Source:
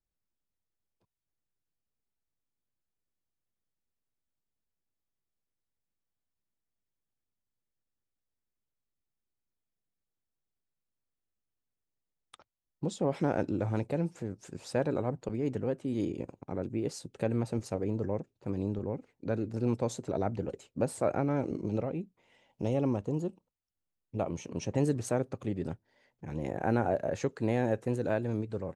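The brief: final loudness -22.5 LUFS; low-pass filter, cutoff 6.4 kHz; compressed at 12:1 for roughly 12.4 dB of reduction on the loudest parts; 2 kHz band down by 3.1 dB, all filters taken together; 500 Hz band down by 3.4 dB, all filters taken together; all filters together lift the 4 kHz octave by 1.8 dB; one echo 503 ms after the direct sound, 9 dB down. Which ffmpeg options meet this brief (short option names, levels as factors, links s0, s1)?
-af "lowpass=6400,equalizer=f=500:t=o:g=-4,equalizer=f=2000:t=o:g=-5,equalizer=f=4000:t=o:g=4.5,acompressor=threshold=0.0126:ratio=12,aecho=1:1:503:0.355,volume=12.6"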